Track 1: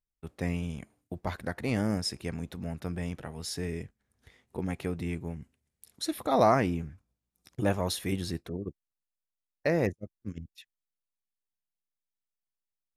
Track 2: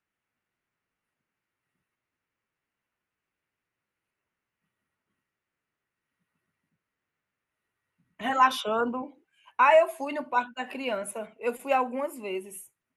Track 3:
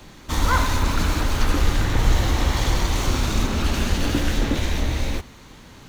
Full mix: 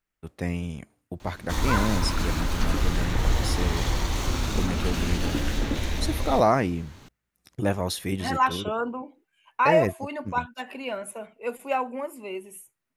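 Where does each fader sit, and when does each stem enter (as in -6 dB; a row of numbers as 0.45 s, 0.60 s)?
+2.5 dB, -1.5 dB, -5.0 dB; 0.00 s, 0.00 s, 1.20 s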